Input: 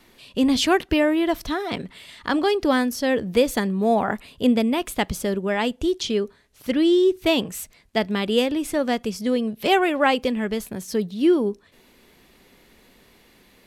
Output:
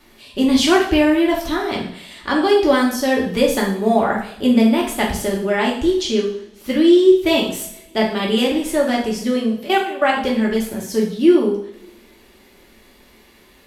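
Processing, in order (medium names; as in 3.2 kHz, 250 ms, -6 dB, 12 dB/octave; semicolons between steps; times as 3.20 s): 9.56–10.17 s: level held to a coarse grid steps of 18 dB; two-slope reverb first 0.56 s, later 2.1 s, from -25 dB, DRR -3 dB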